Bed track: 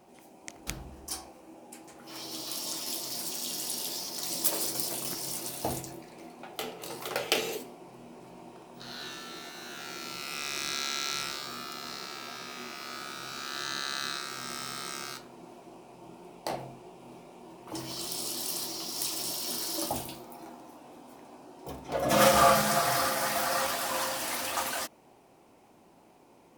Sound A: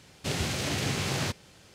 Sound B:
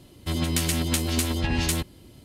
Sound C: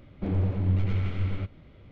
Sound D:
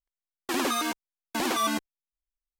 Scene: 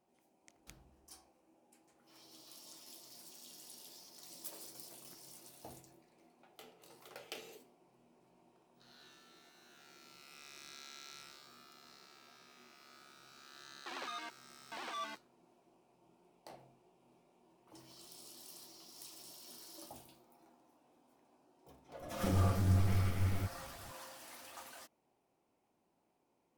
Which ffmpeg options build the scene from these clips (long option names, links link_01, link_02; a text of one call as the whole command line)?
ffmpeg -i bed.wav -i cue0.wav -i cue1.wav -i cue2.wav -i cue3.wav -filter_complex "[0:a]volume=-20dB[link_01];[4:a]acrossover=split=500 5300:gain=0.178 1 0.0794[link_02][link_03][link_04];[link_02][link_03][link_04]amix=inputs=3:normalize=0,atrim=end=2.59,asetpts=PTS-STARTPTS,volume=-14.5dB,afade=type=in:duration=0.004:curve=hsin,afade=type=out:start_time=2.586:duration=0.004:curve=hsin,adelay=13370[link_05];[3:a]atrim=end=1.91,asetpts=PTS-STARTPTS,volume=-5.5dB,afade=type=in:duration=0.004:curve=hsin,afade=type=out:start_time=1.906:duration=0.004:curve=hsin,adelay=22010[link_06];[link_01][link_05][link_06]amix=inputs=3:normalize=0" out.wav